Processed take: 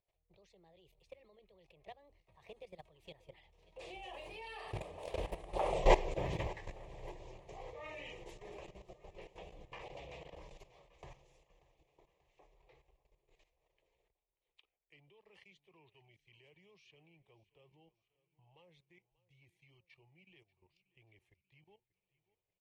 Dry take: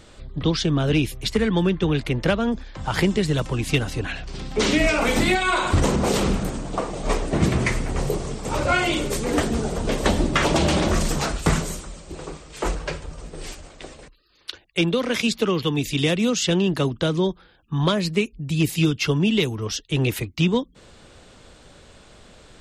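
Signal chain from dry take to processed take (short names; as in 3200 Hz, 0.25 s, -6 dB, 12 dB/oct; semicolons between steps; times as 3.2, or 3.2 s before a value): block floating point 7-bit; Doppler pass-by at 5.76, 60 m/s, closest 3.8 m; high shelf 9300 Hz -5 dB; fixed phaser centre 600 Hz, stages 4; level quantiser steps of 15 dB; EQ curve 110 Hz 0 dB, 2400 Hz +11 dB, 4900 Hz -5 dB; feedback echo 0.586 s, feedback 55%, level -20 dB; gain +6 dB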